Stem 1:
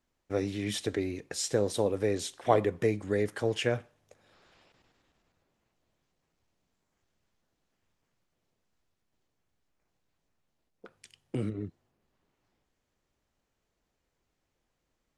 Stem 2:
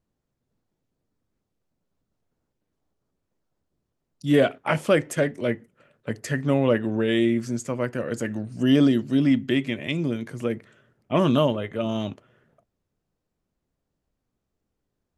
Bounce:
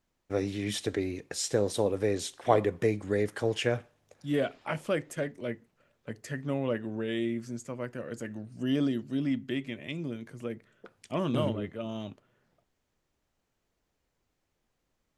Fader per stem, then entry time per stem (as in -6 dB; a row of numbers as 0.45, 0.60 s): +0.5, -10.0 dB; 0.00, 0.00 s